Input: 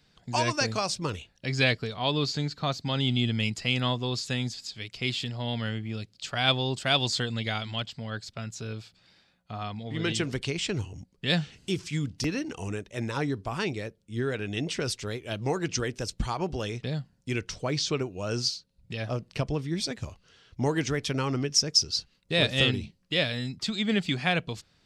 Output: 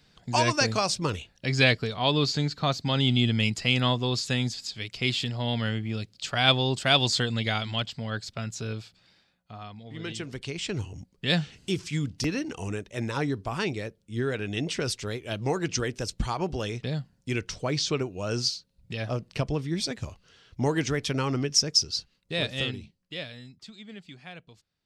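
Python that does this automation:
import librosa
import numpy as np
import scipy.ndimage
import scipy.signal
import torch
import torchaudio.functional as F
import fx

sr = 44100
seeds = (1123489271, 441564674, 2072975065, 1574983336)

y = fx.gain(x, sr, db=fx.line((8.71, 3.0), (9.68, -7.0), (10.26, -7.0), (10.9, 1.0), (21.63, 1.0), (23.16, -10.0), (23.9, -18.0)))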